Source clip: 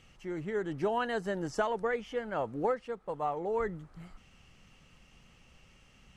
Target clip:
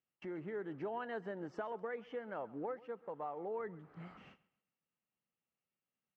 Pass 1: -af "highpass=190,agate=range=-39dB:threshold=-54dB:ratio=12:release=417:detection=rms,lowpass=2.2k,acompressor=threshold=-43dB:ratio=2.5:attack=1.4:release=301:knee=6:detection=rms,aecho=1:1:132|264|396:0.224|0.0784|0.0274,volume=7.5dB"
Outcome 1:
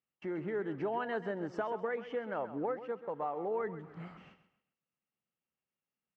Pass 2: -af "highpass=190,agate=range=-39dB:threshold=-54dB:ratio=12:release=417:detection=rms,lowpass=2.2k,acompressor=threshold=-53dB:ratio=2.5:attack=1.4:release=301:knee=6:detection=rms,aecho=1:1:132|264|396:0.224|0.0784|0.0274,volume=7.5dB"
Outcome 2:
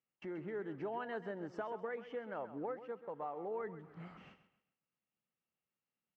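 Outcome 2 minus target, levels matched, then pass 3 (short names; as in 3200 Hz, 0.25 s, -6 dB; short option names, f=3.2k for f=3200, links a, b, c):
echo-to-direct +7.5 dB
-af "highpass=190,agate=range=-39dB:threshold=-54dB:ratio=12:release=417:detection=rms,lowpass=2.2k,acompressor=threshold=-53dB:ratio=2.5:attack=1.4:release=301:knee=6:detection=rms,aecho=1:1:132|264|396:0.0944|0.033|0.0116,volume=7.5dB"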